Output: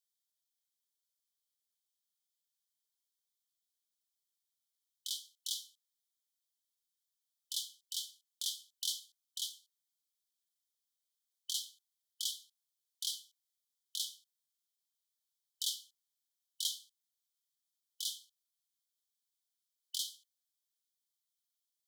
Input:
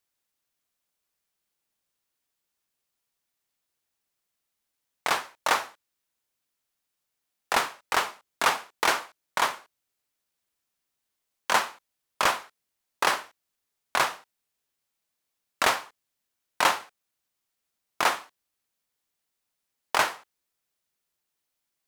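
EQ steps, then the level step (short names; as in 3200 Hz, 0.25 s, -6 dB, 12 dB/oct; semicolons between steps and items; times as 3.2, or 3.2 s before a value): brick-wall FIR high-pass 3000 Hz; -5.5 dB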